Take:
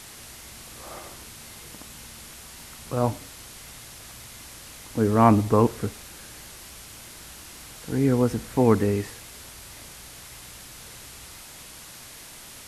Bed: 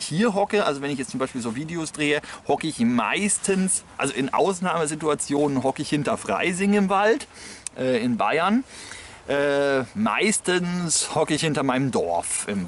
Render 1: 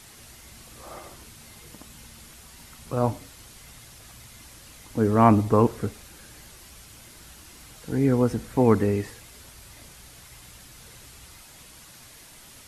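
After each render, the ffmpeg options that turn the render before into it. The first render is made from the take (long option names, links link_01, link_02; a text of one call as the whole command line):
ffmpeg -i in.wav -af "afftdn=noise_reduction=6:noise_floor=-44" out.wav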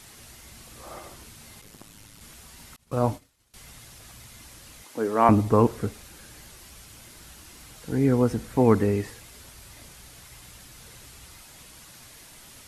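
ffmpeg -i in.wav -filter_complex "[0:a]asplit=3[link_01][link_02][link_03];[link_01]afade=type=out:start_time=1.61:duration=0.02[link_04];[link_02]aeval=exprs='val(0)*sin(2*PI*53*n/s)':channel_layout=same,afade=type=in:start_time=1.61:duration=0.02,afade=type=out:start_time=2.2:duration=0.02[link_05];[link_03]afade=type=in:start_time=2.2:duration=0.02[link_06];[link_04][link_05][link_06]amix=inputs=3:normalize=0,asettb=1/sr,asplit=3[link_07][link_08][link_09];[link_07]atrim=end=2.764[link_10];[link_08]atrim=start=2.76:end=3.54,asetpts=PTS-STARTPTS,afade=type=in:duration=0.004:curve=qsin,afade=type=out:start_time=0.776:duration=0.004:curve=qsin,agate=range=-33dB:threshold=-35dB:ratio=3:release=100:detection=peak[link_11];[link_09]atrim=start=3.536[link_12];[link_10][link_11]acrossfade=duration=0.004:curve1=hsin:curve2=qsin[link_13];[link_13][link_12]acrossfade=duration=0.004:curve1=qsin:curve2=hsin,asettb=1/sr,asplit=3[link_14][link_15][link_16];[link_14]atrim=end=4.844[link_17];[link_15]atrim=start=4.84:end=5.29,asetpts=PTS-STARTPTS,afade=type=in:duration=0.004:curve=qsin,afade=type=out:start_time=0.446:duration=0.004:curve=qsin,highpass=370[link_18];[link_16]atrim=start=5.286[link_19];[link_17][link_18]acrossfade=duration=0.004:curve1=hsin:curve2=qsin[link_20];[link_20][link_19]acrossfade=duration=0.004:curve1=qsin:curve2=hsin" out.wav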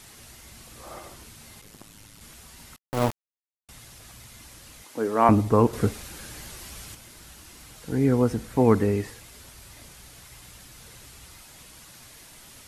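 ffmpeg -i in.wav -filter_complex "[0:a]asettb=1/sr,asplit=3[link_01][link_02][link_03];[link_01]atrim=end=2.784[link_04];[link_02]atrim=start=2.78:end=3.69,asetpts=PTS-STARTPTS,afade=type=in:duration=0.004:curve=qsin,afade=type=out:start_time=0.906:duration=0.004:curve=qsin,aeval=exprs='val(0)*gte(abs(val(0)),0.0562)':channel_layout=same[link_05];[link_03]atrim=start=3.686[link_06];[link_04][link_05]acrossfade=duration=0.004:curve1=hsin:curve2=qsin[link_07];[link_07][link_06]acrossfade=duration=0.004:curve1=qsin:curve2=hsin,asettb=1/sr,asplit=3[link_08][link_09][link_10];[link_08]atrim=end=5.734[link_11];[link_09]atrim=start=5.73:end=6.95,asetpts=PTS-STARTPTS,afade=type=in:duration=0.004:curve=qsin,afade=type=out:start_time=1.216:duration=0.004:curve=qsin,acontrast=52[link_12];[link_10]atrim=start=6.946[link_13];[link_11][link_12]acrossfade=duration=0.004:curve1=hsin:curve2=qsin[link_14];[link_14][link_13]acrossfade=duration=0.004:curve1=qsin:curve2=hsin" out.wav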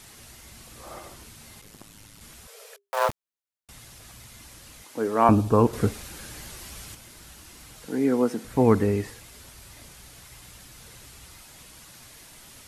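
ffmpeg -i in.wav -filter_complex "[0:a]asettb=1/sr,asplit=3[link_01][link_02][link_03];[link_01]atrim=end=2.474[link_04];[link_02]atrim=start=2.47:end=3.09,asetpts=PTS-STARTPTS,afade=type=in:duration=0.004:curve=qsin,afade=type=out:start_time=0.616:duration=0.004:curve=qsin,afreqshift=400[link_05];[link_03]atrim=start=3.086[link_06];[link_04][link_05]acrossfade=duration=0.004:curve1=hsin:curve2=qsin[link_07];[link_07][link_06]acrossfade=duration=0.004:curve1=qsin:curve2=hsin,asettb=1/sr,asplit=3[link_08][link_09][link_10];[link_08]atrim=end=5.234[link_11];[link_09]atrim=start=5.23:end=5.66,asetpts=PTS-STARTPTS,afade=type=in:duration=0.004:curve=qsin,afade=type=out:start_time=0.426:duration=0.004:curve=qsin,asuperstop=centerf=2000:order=4:qfactor=4.9[link_12];[link_10]atrim=start=5.656[link_13];[link_11][link_12]acrossfade=duration=0.004:curve1=hsin:curve2=qsin[link_14];[link_14][link_13]acrossfade=duration=0.004:curve1=qsin:curve2=hsin,asettb=1/sr,asplit=3[link_15][link_16][link_17];[link_15]atrim=end=7.874[link_18];[link_16]atrim=start=7.87:end=8.45,asetpts=PTS-STARTPTS,afade=type=in:duration=0.004:curve=qsin,afade=type=out:start_time=0.576:duration=0.004:curve=qsin,highpass=frequency=200:width=0.5412,highpass=frequency=200:width=1.3066[link_19];[link_17]atrim=start=8.446[link_20];[link_18][link_19]acrossfade=duration=0.004:curve1=hsin:curve2=qsin[link_21];[link_21][link_20]acrossfade=duration=0.004:curve1=qsin:curve2=hsin" out.wav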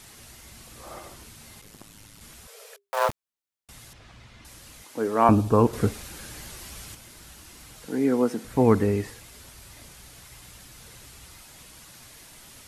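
ffmpeg -i in.wav -filter_complex "[0:a]asettb=1/sr,asplit=3[link_01][link_02][link_03];[link_01]atrim=end=3.934[link_04];[link_02]atrim=start=3.93:end=4.45,asetpts=PTS-STARTPTS,afade=type=in:duration=0.004:curve=qsin,afade=type=out:start_time=0.516:duration=0.004:curve=qsin,lowpass=3500[link_05];[link_03]atrim=start=4.446[link_06];[link_04][link_05]acrossfade=duration=0.004:curve1=hsin:curve2=qsin[link_07];[link_07][link_06]acrossfade=duration=0.004:curve1=qsin:curve2=hsin" out.wav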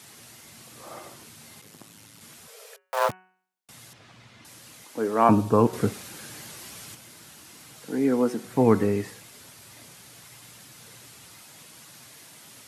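ffmpeg -i in.wav -af "highpass=frequency=110:width=0.5412,highpass=frequency=110:width=1.3066,bandreject=frequency=185.5:width_type=h:width=4,bandreject=frequency=371:width_type=h:width=4,bandreject=frequency=556.5:width_type=h:width=4,bandreject=frequency=742:width_type=h:width=4,bandreject=frequency=927.5:width_type=h:width=4,bandreject=frequency=1113:width_type=h:width=4,bandreject=frequency=1298.5:width_type=h:width=4,bandreject=frequency=1484:width_type=h:width=4,bandreject=frequency=1669.5:width_type=h:width=4,bandreject=frequency=1855:width_type=h:width=4,bandreject=frequency=2040.5:width_type=h:width=4,bandreject=frequency=2226:width_type=h:width=4,bandreject=frequency=2411.5:width_type=h:width=4,bandreject=frequency=2597:width_type=h:width=4,bandreject=frequency=2782.5:width_type=h:width=4,bandreject=frequency=2968:width_type=h:width=4" out.wav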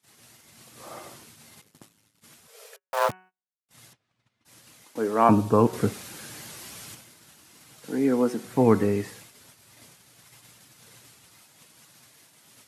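ffmpeg -i in.wav -af "agate=range=-26dB:threshold=-47dB:ratio=16:detection=peak" out.wav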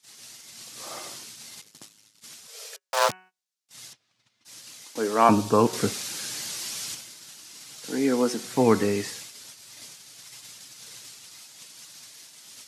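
ffmpeg -i in.wav -af "highpass=frequency=150:poles=1,equalizer=frequency=5400:width=0.57:gain=12.5" out.wav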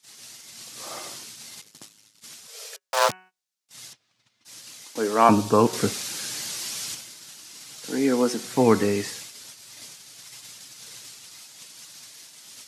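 ffmpeg -i in.wav -af "volume=1.5dB" out.wav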